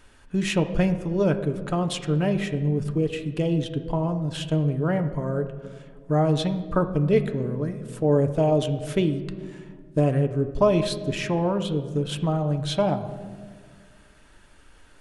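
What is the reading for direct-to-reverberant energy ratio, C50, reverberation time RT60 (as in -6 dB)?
6.5 dB, 11.0 dB, 1.7 s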